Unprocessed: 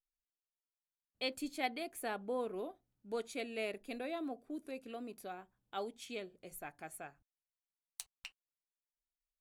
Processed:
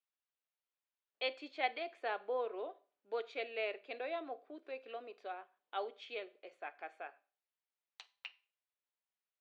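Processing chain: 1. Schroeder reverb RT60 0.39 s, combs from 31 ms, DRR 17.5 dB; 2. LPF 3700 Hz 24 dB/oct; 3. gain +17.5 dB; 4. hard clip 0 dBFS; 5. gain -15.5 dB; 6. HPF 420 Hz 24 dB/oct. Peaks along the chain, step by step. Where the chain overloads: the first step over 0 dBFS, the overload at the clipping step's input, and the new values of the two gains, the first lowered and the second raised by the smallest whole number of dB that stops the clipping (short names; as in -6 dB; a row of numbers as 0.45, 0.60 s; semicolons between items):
-21.5, -23.0, -5.5, -5.5, -21.0, -21.0 dBFS; no overload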